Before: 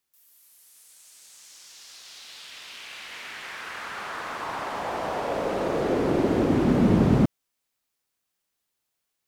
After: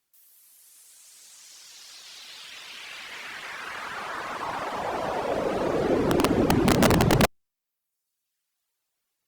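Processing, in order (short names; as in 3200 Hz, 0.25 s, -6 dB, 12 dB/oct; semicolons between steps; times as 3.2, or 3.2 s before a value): reverb removal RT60 1.2 s; wrapped overs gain 15 dB; gain +3 dB; Opus 64 kbps 48000 Hz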